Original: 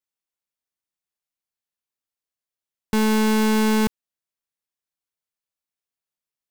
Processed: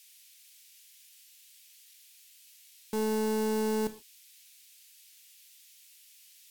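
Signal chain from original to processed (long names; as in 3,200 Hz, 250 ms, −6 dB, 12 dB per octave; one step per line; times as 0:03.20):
parametric band 470 Hz +2.5 dB 1.3 octaves
wave folding −25 dBFS
bass and treble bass −1 dB, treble +12 dB
noise in a band 2,300–17,000 Hz −58 dBFS
on a send: convolution reverb, pre-delay 3 ms, DRR 9.5 dB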